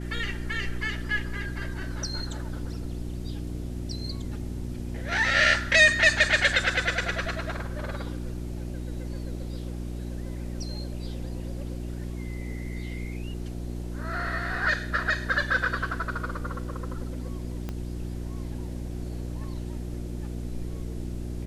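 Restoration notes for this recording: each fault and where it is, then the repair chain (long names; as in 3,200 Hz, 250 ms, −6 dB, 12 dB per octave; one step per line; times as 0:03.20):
mains hum 60 Hz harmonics 6 −34 dBFS
0:17.69: click −20 dBFS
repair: click removal
hum removal 60 Hz, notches 6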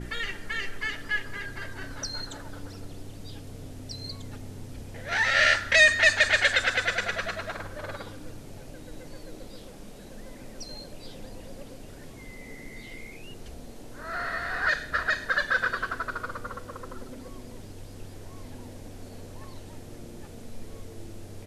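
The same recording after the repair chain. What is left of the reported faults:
0:17.69: click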